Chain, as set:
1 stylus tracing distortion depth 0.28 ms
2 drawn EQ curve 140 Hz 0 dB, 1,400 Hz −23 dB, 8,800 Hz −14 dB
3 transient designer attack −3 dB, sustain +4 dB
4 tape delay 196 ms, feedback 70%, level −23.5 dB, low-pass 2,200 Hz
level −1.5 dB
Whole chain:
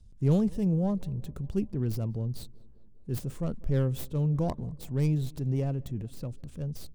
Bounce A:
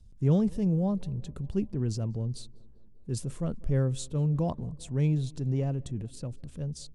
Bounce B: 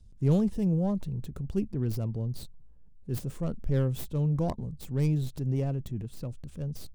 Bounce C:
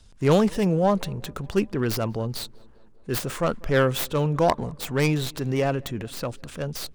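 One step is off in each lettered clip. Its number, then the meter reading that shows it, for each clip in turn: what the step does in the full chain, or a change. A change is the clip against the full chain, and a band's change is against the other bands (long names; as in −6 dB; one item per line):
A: 1, 8 kHz band +5.5 dB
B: 4, echo-to-direct ratio −30.5 dB to none audible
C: 2, change in crest factor +4.5 dB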